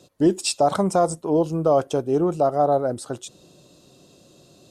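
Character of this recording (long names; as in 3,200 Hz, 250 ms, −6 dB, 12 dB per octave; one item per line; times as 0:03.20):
background noise floor −54 dBFS
spectral slope −5.5 dB per octave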